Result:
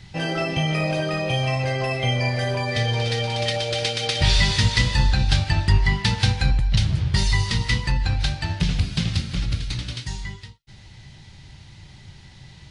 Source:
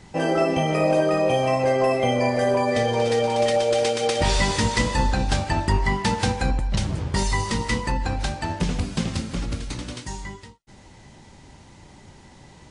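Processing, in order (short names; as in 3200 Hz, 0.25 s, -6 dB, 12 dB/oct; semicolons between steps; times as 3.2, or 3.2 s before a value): ten-band EQ 125 Hz +6 dB, 250 Hz -10 dB, 500 Hz -9 dB, 1000 Hz -8 dB, 4000 Hz +6 dB, 8000 Hz -9 dB; gain +3.5 dB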